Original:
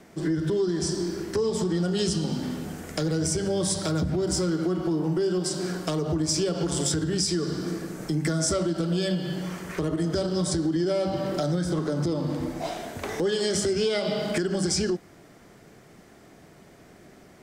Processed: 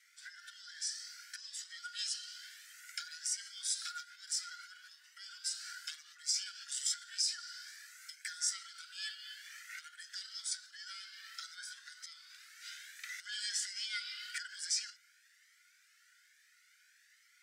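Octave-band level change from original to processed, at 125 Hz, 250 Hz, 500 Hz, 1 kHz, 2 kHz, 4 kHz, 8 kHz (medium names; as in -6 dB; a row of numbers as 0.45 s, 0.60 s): under -40 dB, under -40 dB, under -40 dB, -17.5 dB, -7.0 dB, -6.5 dB, -6.5 dB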